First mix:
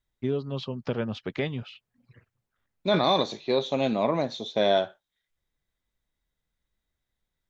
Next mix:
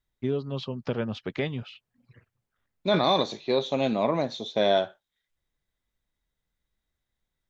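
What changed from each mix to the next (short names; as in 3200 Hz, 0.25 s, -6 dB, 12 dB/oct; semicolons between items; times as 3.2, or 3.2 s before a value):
none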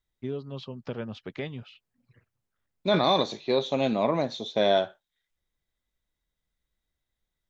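first voice -5.5 dB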